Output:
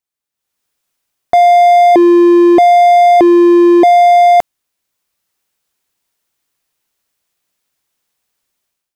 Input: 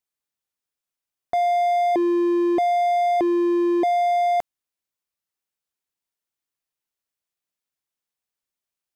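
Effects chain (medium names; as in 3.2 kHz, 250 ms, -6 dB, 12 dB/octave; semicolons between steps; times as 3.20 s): level rider gain up to 15.5 dB; trim +1 dB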